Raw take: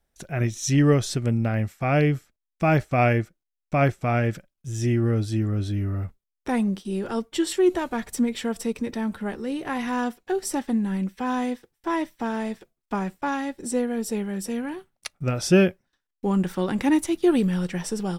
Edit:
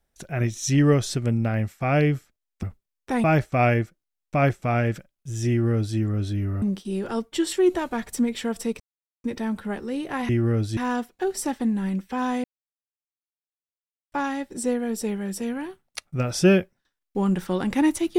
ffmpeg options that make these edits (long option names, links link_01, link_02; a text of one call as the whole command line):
ffmpeg -i in.wav -filter_complex "[0:a]asplit=9[link_01][link_02][link_03][link_04][link_05][link_06][link_07][link_08][link_09];[link_01]atrim=end=2.632[link_10];[link_02]atrim=start=6.008:end=6.622[link_11];[link_03]atrim=start=2.628:end=6.012[link_12];[link_04]atrim=start=6.618:end=8.8,asetpts=PTS-STARTPTS,afade=type=out:start_time=2.178:duration=0.004:curve=hsin,apad=pad_dur=0.44[link_13];[link_05]atrim=start=8.8:end=9.852,asetpts=PTS-STARTPTS,afade=type=in:duration=0.004:curve=hsin[link_14];[link_06]atrim=start=4.878:end=5.362[link_15];[link_07]atrim=start=9.848:end=11.52,asetpts=PTS-STARTPTS,afade=type=out:start_time=1.668:duration=0.004:curve=hsin[link_16];[link_08]atrim=start=11.52:end=13.2,asetpts=PTS-STARTPTS,volume=0[link_17];[link_09]atrim=start=13.2,asetpts=PTS-STARTPTS,afade=type=in:duration=0.004:curve=hsin[link_18];[link_10][link_11]acrossfade=duration=0.004:curve1=hsin:curve2=hsin[link_19];[link_19][link_12]acrossfade=duration=0.004:curve1=hsin:curve2=hsin[link_20];[link_13][link_14]concat=n=2:v=0:a=1[link_21];[link_20][link_21]acrossfade=duration=0.004:curve1=hsin:curve2=hsin[link_22];[link_22][link_15]acrossfade=duration=0.004:curve1=hsin:curve2=hsin[link_23];[link_16][link_17][link_18]concat=n=3:v=0:a=1[link_24];[link_23][link_24]acrossfade=duration=0.004:curve1=hsin:curve2=hsin" out.wav